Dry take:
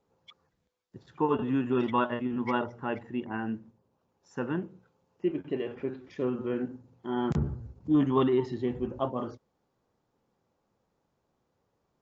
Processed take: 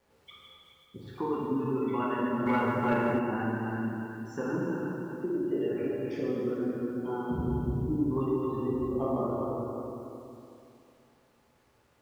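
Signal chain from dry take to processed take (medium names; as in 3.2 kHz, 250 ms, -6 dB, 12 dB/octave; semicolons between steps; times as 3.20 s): backward echo that repeats 185 ms, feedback 59%, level -8.5 dB; 7.21–8.02 s: low-pass 1.6 kHz -> 1 kHz 6 dB/octave; spectral gate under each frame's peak -25 dB strong; peaking EQ 420 Hz +4 dB 0.23 oct; compression 10:1, threshold -32 dBFS, peak gain reduction 14.5 dB; bit crusher 12-bit; plate-style reverb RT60 2.3 s, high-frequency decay 0.85×, DRR -6 dB; 2.46–3.19 s: waveshaping leveller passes 1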